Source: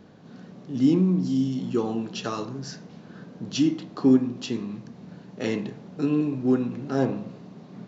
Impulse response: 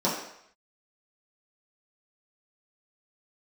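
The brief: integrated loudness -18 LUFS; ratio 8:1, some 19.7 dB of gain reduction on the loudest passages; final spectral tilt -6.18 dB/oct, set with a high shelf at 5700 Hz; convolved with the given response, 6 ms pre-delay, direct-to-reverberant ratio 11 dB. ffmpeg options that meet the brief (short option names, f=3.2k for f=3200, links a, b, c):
-filter_complex "[0:a]highshelf=f=5.7k:g=-8.5,acompressor=threshold=-35dB:ratio=8,asplit=2[a][b];[1:a]atrim=start_sample=2205,adelay=6[c];[b][c]afir=irnorm=-1:irlink=0,volume=-23.5dB[d];[a][d]amix=inputs=2:normalize=0,volume=21.5dB"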